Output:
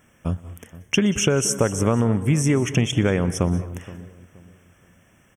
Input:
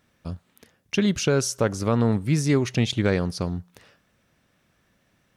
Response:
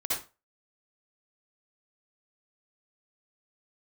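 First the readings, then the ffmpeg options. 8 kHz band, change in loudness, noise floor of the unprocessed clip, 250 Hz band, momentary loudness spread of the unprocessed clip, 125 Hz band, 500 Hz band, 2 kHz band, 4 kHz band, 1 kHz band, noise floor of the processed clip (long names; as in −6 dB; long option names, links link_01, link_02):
+6.5 dB, +2.0 dB, −67 dBFS, +2.5 dB, 16 LU, +3.0 dB, +2.0 dB, +3.0 dB, +2.5 dB, +2.0 dB, −58 dBFS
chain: -filter_complex "[0:a]equalizer=frequency=8200:width=7.9:gain=8,acompressor=threshold=-24dB:ratio=6,asuperstop=centerf=4300:order=12:qfactor=2.2,asplit=2[link_01][link_02];[link_02]adelay=473,lowpass=frequency=1000:poles=1,volume=-17dB,asplit=2[link_03][link_04];[link_04]adelay=473,lowpass=frequency=1000:poles=1,volume=0.33,asplit=2[link_05][link_06];[link_06]adelay=473,lowpass=frequency=1000:poles=1,volume=0.33[link_07];[link_01][link_03][link_05][link_07]amix=inputs=4:normalize=0,asplit=2[link_08][link_09];[1:a]atrim=start_sample=2205,adelay=121[link_10];[link_09][link_10]afir=irnorm=-1:irlink=0,volume=-20.5dB[link_11];[link_08][link_11]amix=inputs=2:normalize=0,volume=8.5dB"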